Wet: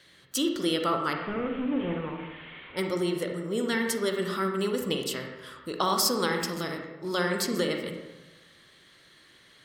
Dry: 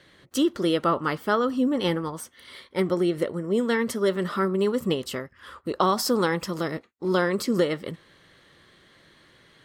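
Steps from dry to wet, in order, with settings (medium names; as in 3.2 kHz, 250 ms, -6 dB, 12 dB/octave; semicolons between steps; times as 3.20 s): 1.13–2.77 s: one-bit delta coder 16 kbps, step -38 dBFS; treble shelf 2.1 kHz +12 dB; reverberation RT60 1.1 s, pre-delay 38 ms, DRR 3 dB; trim -7.5 dB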